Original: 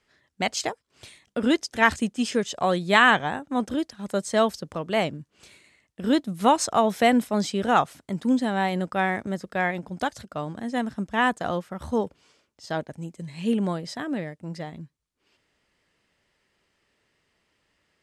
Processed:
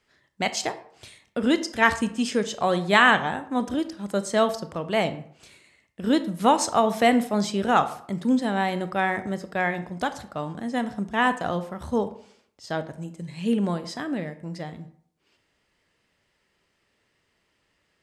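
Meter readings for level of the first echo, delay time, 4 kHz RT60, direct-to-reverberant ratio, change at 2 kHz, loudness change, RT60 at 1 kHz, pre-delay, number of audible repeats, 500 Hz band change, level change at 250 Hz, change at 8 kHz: no echo, no echo, 0.40 s, 11.0 dB, +0.5 dB, +0.5 dB, 0.60 s, 23 ms, no echo, +0.5 dB, +0.5 dB, 0.0 dB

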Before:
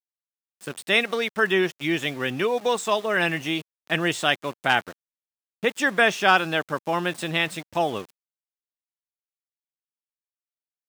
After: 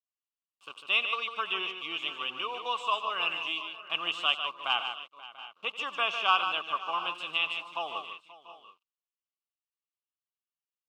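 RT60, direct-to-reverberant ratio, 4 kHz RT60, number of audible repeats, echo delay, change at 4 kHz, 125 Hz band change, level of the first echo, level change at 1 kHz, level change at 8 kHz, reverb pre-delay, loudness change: no reverb, no reverb, no reverb, 5, 90 ms, -1.5 dB, under -25 dB, -16.5 dB, -5.0 dB, under -15 dB, no reverb, -6.5 dB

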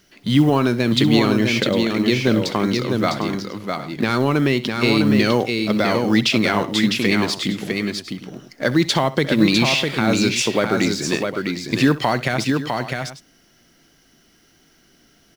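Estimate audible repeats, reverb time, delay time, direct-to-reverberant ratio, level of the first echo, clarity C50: 3, no reverb, 65 ms, no reverb, -17.0 dB, no reverb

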